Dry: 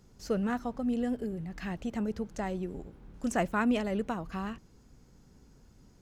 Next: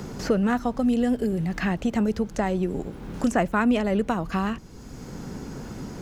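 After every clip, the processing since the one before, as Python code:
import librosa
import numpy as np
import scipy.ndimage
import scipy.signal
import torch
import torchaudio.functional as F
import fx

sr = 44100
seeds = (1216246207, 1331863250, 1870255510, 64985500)

y = fx.band_squash(x, sr, depth_pct=70)
y = y * 10.0 ** (8.5 / 20.0)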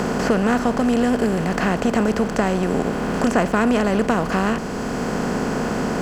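y = fx.bin_compress(x, sr, power=0.4)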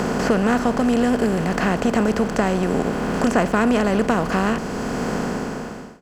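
y = fx.fade_out_tail(x, sr, length_s=0.89)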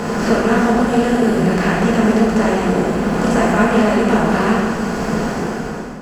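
y = fx.rev_plate(x, sr, seeds[0], rt60_s=1.7, hf_ratio=0.75, predelay_ms=0, drr_db=-6.0)
y = y * 10.0 ** (-2.5 / 20.0)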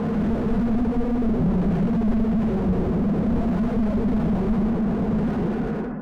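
y = fx.spec_expand(x, sr, power=1.5)
y = fx.filter_lfo_lowpass(y, sr, shape='square', hz=0.58, low_hz=910.0, high_hz=2200.0, q=1.1)
y = fx.slew_limit(y, sr, full_power_hz=24.0)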